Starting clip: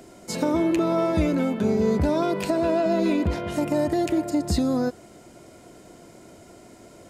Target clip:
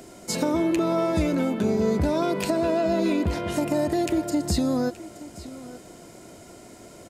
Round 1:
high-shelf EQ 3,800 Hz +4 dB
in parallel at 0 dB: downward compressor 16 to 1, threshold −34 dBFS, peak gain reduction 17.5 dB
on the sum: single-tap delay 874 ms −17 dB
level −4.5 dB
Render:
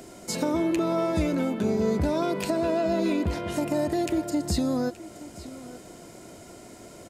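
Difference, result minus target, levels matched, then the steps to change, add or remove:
downward compressor: peak gain reduction +9 dB
change: downward compressor 16 to 1, threshold −24.5 dBFS, peak gain reduction 8.5 dB

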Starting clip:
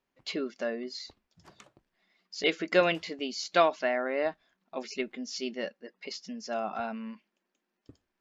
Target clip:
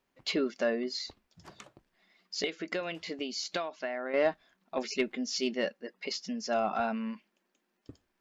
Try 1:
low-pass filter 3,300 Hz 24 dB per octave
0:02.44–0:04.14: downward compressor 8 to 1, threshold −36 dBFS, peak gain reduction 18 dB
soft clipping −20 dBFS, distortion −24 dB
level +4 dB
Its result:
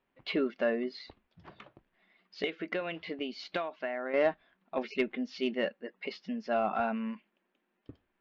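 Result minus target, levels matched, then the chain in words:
4,000 Hz band −5.5 dB
0:02.44–0:04.14: downward compressor 8 to 1, threshold −36 dBFS, peak gain reduction 18 dB
soft clipping −20 dBFS, distortion −24 dB
level +4 dB

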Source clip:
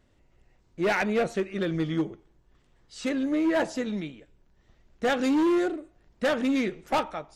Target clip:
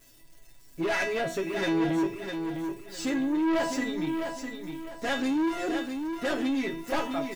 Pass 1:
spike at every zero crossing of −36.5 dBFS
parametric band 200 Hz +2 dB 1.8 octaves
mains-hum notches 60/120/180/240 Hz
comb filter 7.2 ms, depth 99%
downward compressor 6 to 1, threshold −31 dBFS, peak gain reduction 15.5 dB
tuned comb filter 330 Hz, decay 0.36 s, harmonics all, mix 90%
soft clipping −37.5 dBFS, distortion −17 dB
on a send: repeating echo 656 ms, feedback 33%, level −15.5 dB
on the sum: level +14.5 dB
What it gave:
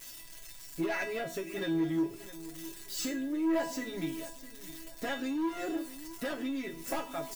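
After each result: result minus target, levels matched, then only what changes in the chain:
downward compressor: peak gain reduction +9.5 dB; spike at every zero crossing: distortion +12 dB; echo-to-direct −9 dB
change: downward compressor 6 to 1, threshold −19.5 dBFS, peak gain reduction 6 dB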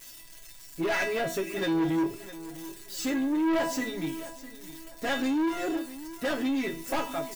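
spike at every zero crossing: distortion +12 dB; echo-to-direct −9 dB
change: spike at every zero crossing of −48.5 dBFS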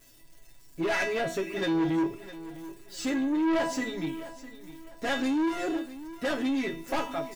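echo-to-direct −9 dB
change: repeating echo 656 ms, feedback 33%, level −6.5 dB

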